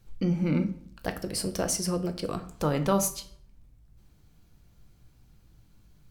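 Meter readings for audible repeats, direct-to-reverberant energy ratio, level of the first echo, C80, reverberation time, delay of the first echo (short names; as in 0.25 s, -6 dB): none, 7.5 dB, none, 16.5 dB, 0.55 s, none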